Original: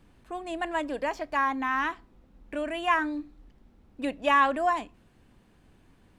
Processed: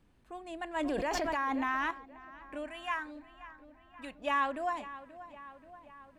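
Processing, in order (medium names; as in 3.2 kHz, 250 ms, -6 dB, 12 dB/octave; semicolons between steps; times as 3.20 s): 2.66–4.19 s: peaking EQ 390 Hz -10.5 dB 1.6 oct; filtered feedback delay 531 ms, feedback 64%, low-pass 3.6 kHz, level -15 dB; 0.76–1.91 s: level flattener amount 100%; trim -8.5 dB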